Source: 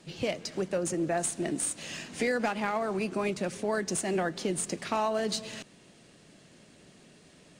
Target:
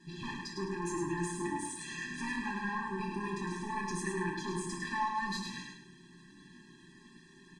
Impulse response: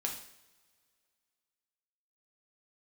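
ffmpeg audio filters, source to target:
-filter_complex "[0:a]equalizer=f=250:t=o:w=0.33:g=8,equalizer=f=800:t=o:w=0.33:g=-8,equalizer=f=1.25k:t=o:w=0.33:g=-9,equalizer=f=2.5k:t=o:w=0.33:g=-8,asoftclip=type=tanh:threshold=-31.5dB,equalizer=f=1.4k:w=0.73:g=11,aecho=1:1:5.6:0.56[a];[1:a]atrim=start_sample=2205,afade=t=out:st=0.14:d=0.01,atrim=end_sample=6615,asetrate=48510,aresample=44100[b];[a][b]afir=irnorm=-1:irlink=0,tremolo=f=200:d=0.4,lowpass=8.9k,aecho=1:1:105|210|315|420:0.596|0.185|0.0572|0.0177,afftfilt=real='re*eq(mod(floor(b*sr/1024/390),2),0)':imag='im*eq(mod(floor(b*sr/1024/390),2),0)':win_size=1024:overlap=0.75,volume=-3dB"

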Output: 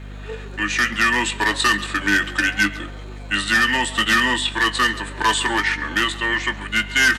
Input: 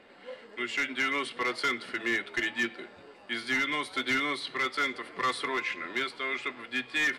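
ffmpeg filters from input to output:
-filter_complex "[0:a]crystalizer=i=2.5:c=0,adynamicequalizer=threshold=0.00224:dfrequency=480:dqfactor=5.3:tfrequency=480:tqfactor=5.3:attack=5:release=100:ratio=0.375:range=1.5:mode=cutabove:tftype=bell,highpass=f=160:w=0.5412,highpass=f=160:w=1.3066,asetrate=38170,aresample=44100,atempo=1.15535,aeval=exprs='val(0)+0.00631*(sin(2*PI*50*n/s)+sin(2*PI*2*50*n/s)/2+sin(2*PI*3*50*n/s)/3+sin(2*PI*4*50*n/s)/4+sin(2*PI*5*50*n/s)/5)':c=same,asplit=2[a][b];[b]adelay=20,volume=-13.5dB[c];[a][c]amix=inputs=2:normalize=0,asplit=2[d][e];[e]aecho=0:1:137:0.112[f];[d][f]amix=inputs=2:normalize=0,volume=9dB"

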